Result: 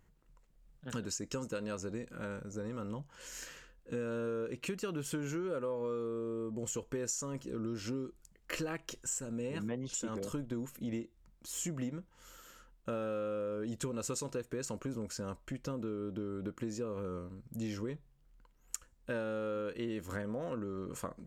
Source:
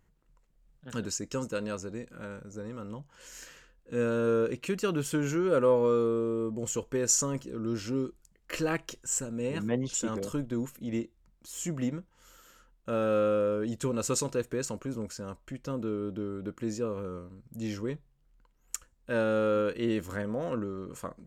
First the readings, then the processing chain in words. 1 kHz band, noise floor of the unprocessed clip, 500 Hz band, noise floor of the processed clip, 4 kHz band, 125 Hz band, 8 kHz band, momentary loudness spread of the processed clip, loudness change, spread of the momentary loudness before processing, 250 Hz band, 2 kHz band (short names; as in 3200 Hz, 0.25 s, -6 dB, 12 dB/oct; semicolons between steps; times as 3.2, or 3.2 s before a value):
-8.0 dB, -68 dBFS, -9.0 dB, -67 dBFS, -5.5 dB, -6.0 dB, -7.5 dB, 9 LU, -8.0 dB, 15 LU, -6.5 dB, -6.5 dB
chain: compressor 6:1, threshold -36 dBFS, peak gain reduction 15 dB; gain +1 dB